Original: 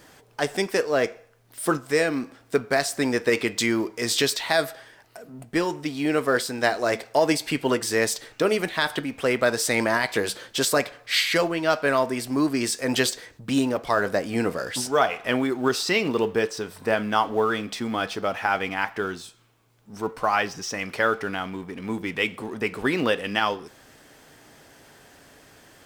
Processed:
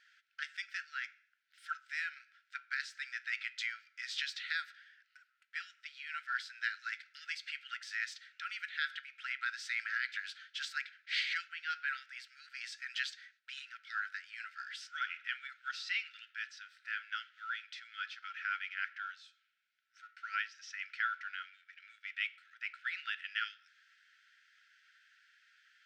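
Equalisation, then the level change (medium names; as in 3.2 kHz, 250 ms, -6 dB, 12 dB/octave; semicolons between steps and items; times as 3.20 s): brick-wall FIR high-pass 1.3 kHz; distance through air 200 m; -8.0 dB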